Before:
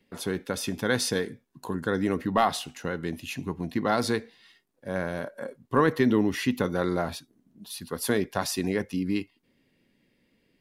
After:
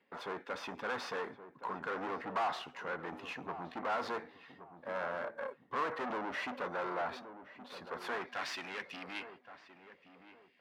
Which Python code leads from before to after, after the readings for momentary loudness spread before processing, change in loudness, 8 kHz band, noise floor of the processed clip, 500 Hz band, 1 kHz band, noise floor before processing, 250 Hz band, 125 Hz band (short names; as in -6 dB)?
12 LU, -11.5 dB, -21.5 dB, -65 dBFS, -12.0 dB, -6.5 dB, -70 dBFS, -19.5 dB, -22.5 dB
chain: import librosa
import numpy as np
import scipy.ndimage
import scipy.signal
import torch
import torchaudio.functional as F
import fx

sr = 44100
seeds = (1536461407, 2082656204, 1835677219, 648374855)

p1 = scipy.signal.medfilt(x, 5)
p2 = fx.tube_stage(p1, sr, drive_db=34.0, bias=0.5)
p3 = fx.filter_sweep_bandpass(p2, sr, from_hz=1100.0, to_hz=2300.0, start_s=7.96, end_s=8.67, q=1.3)
p4 = p3 + fx.echo_filtered(p3, sr, ms=1121, feedback_pct=31, hz=1100.0, wet_db=-11.0, dry=0)
y = p4 * 10.0 ** (6.5 / 20.0)